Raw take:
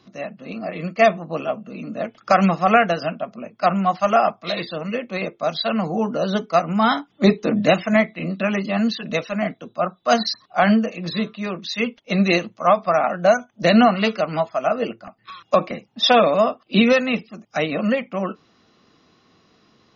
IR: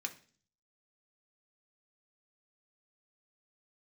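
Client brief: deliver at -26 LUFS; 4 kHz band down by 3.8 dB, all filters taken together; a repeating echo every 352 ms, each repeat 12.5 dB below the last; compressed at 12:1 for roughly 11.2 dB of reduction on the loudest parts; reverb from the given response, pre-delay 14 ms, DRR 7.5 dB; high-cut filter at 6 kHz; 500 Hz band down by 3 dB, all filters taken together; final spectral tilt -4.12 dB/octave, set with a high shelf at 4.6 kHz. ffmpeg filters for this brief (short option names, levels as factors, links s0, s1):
-filter_complex "[0:a]lowpass=6000,equalizer=f=500:t=o:g=-4,equalizer=f=4000:t=o:g=-5.5,highshelf=f=4600:g=3.5,acompressor=threshold=0.0794:ratio=12,aecho=1:1:352|704|1056:0.237|0.0569|0.0137,asplit=2[s0][s1];[1:a]atrim=start_sample=2205,adelay=14[s2];[s1][s2]afir=irnorm=-1:irlink=0,volume=0.422[s3];[s0][s3]amix=inputs=2:normalize=0,volume=1.26"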